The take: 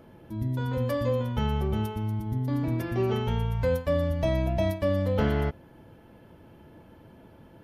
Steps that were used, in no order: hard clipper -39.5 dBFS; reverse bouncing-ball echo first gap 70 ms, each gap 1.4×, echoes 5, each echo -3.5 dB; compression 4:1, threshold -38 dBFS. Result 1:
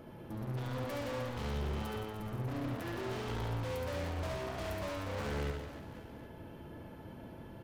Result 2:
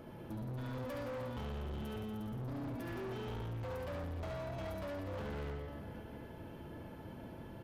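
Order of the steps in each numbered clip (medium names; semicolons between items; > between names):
hard clipper > compression > reverse bouncing-ball echo; compression > reverse bouncing-ball echo > hard clipper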